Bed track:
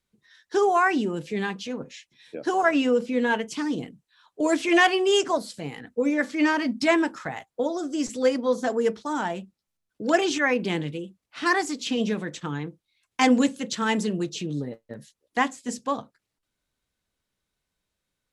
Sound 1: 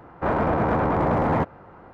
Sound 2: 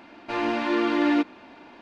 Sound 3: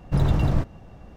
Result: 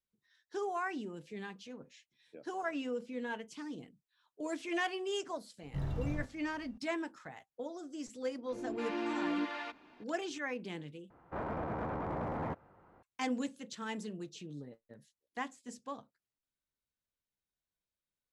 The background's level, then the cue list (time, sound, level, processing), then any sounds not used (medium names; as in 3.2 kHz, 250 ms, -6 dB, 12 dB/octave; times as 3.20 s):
bed track -16 dB
5.62 s: add 3 -13.5 dB + harmonic-percussive split percussive -11 dB
8.23 s: add 2 -12 dB + bands offset in time lows, highs 260 ms, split 530 Hz
11.10 s: replace with 1 -16 dB